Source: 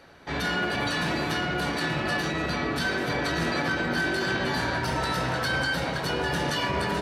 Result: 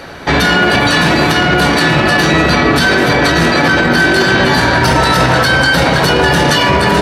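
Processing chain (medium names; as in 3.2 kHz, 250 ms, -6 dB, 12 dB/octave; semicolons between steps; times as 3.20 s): loudness maximiser +23 dB; trim -1 dB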